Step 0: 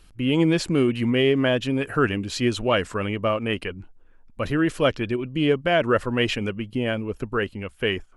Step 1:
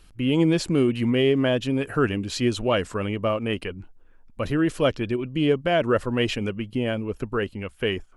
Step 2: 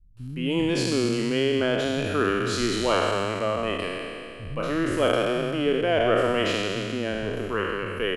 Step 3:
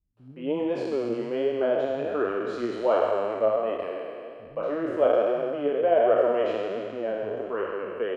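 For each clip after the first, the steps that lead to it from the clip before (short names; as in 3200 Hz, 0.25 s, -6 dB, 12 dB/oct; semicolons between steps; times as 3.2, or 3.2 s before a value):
dynamic EQ 1800 Hz, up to -4 dB, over -34 dBFS, Q 0.79
spectral trails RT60 2.48 s; bands offset in time lows, highs 0.17 s, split 180 Hz; gain -4.5 dB
flange 1.3 Hz, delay 0.7 ms, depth 8.8 ms, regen +40%; band-pass 610 Hz, Q 1.8; gain +7.5 dB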